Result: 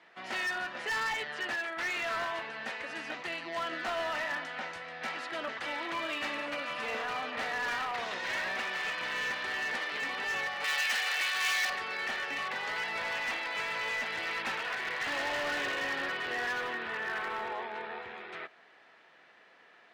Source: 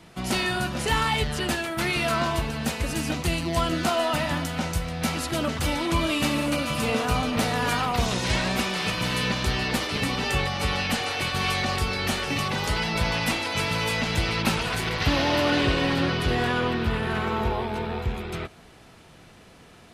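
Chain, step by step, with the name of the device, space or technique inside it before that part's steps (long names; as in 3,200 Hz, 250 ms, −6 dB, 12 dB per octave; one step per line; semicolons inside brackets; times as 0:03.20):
megaphone (band-pass filter 540–3,300 Hz; parametric band 1,800 Hz +9 dB 0.39 octaves; hard clipping −22.5 dBFS, distortion −13 dB)
0:10.64–0:11.70: spectral tilt +4 dB per octave
level −7 dB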